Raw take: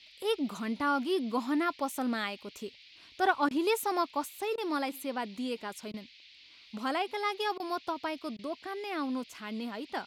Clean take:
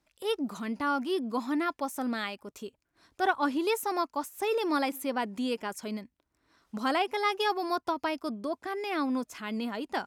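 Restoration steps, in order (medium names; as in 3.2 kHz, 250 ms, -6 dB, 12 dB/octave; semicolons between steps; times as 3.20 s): interpolate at 3.49/4.56/5.92/7.58/8.37 s, 17 ms; noise print and reduce 16 dB; trim 0 dB, from 4.37 s +4 dB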